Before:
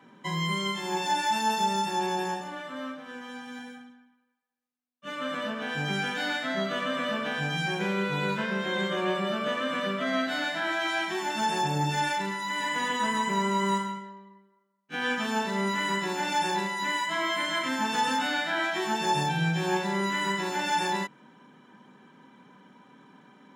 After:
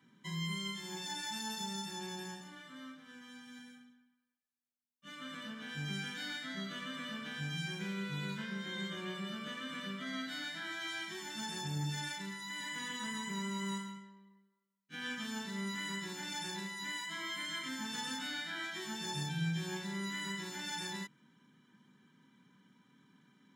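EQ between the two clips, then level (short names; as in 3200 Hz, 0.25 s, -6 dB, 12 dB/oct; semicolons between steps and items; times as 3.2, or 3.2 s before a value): passive tone stack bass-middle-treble 6-0-2; notch 2600 Hz, Q 8.3; +8.5 dB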